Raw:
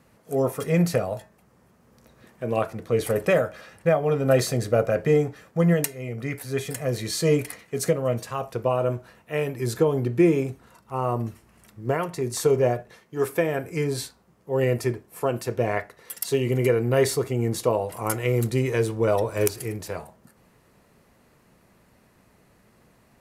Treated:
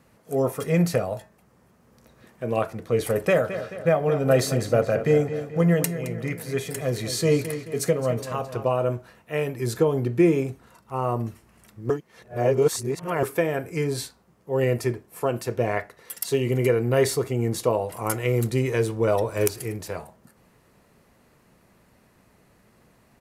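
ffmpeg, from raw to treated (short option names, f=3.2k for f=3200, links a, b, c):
-filter_complex "[0:a]asplit=3[a][b][c];[a]afade=t=out:st=3.43:d=0.02[d];[b]asplit=2[e][f];[f]adelay=217,lowpass=f=4.8k:p=1,volume=-11dB,asplit=2[g][h];[h]adelay=217,lowpass=f=4.8k:p=1,volume=0.53,asplit=2[i][j];[j]adelay=217,lowpass=f=4.8k:p=1,volume=0.53,asplit=2[k][l];[l]adelay=217,lowpass=f=4.8k:p=1,volume=0.53,asplit=2[m][n];[n]adelay=217,lowpass=f=4.8k:p=1,volume=0.53,asplit=2[o][p];[p]adelay=217,lowpass=f=4.8k:p=1,volume=0.53[q];[e][g][i][k][m][o][q]amix=inputs=7:normalize=0,afade=t=in:st=3.43:d=0.02,afade=t=out:st=8.72:d=0.02[r];[c]afade=t=in:st=8.72:d=0.02[s];[d][r][s]amix=inputs=3:normalize=0,asplit=3[t][u][v];[t]atrim=end=11.902[w];[u]atrim=start=11.898:end=13.232,asetpts=PTS-STARTPTS,areverse[x];[v]atrim=start=13.228[y];[w][x]acrossfade=d=0.004:c1=hsin:c2=hsin[z];[z][y]acrossfade=d=0.004:c1=hsin:c2=hsin"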